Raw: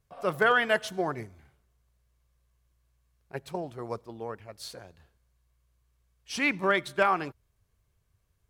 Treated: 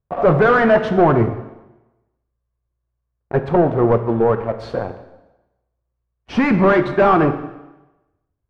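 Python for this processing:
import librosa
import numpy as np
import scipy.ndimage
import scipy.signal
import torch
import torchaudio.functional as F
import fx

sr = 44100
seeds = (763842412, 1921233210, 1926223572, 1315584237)

y = fx.leveller(x, sr, passes=5)
y = scipy.signal.sosfilt(scipy.signal.butter(2, 1100.0, 'lowpass', fs=sr, output='sos'), y)
y = fx.rev_plate(y, sr, seeds[0], rt60_s=1.0, hf_ratio=0.95, predelay_ms=0, drr_db=7.5)
y = y * librosa.db_to_amplitude(5.5)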